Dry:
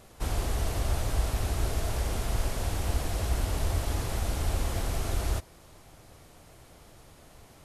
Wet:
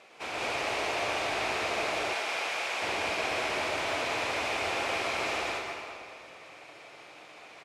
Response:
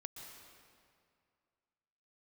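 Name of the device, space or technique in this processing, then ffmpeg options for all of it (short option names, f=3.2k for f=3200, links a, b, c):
station announcement: -filter_complex "[0:a]highpass=470,lowpass=4.7k,equalizer=f=2.4k:t=o:w=0.38:g=11,aecho=1:1:125.4|195.3:0.708|1[a];[1:a]atrim=start_sample=2205[b];[a][b]afir=irnorm=-1:irlink=0,asettb=1/sr,asplit=3[c][d][e];[c]atrim=end=2.134[f];[d]atrim=start=2.13:end=2.82,asetpts=PTS-STARTPTS,afade=t=in:d=0.004:c=qsin,afade=t=out:st=0.686:d=0.004:c=qsin,highpass=f=730:p=1[g];[e]atrim=start=2.816[h];[f][g]acrossfade=d=0.004:c1=hsin:c2=qsin[i];[i][h]acrossfade=d=0.004:c1=qsin:c2=hsin,volume=7dB"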